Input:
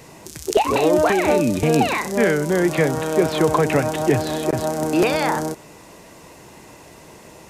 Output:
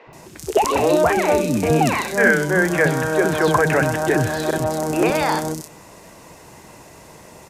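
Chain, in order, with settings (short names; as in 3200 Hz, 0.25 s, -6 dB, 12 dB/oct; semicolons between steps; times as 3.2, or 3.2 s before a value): 2.04–4.58 bell 1600 Hz +12 dB 0.25 oct; three bands offset in time mids, lows, highs 70/130 ms, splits 320/3100 Hz; gain +1.5 dB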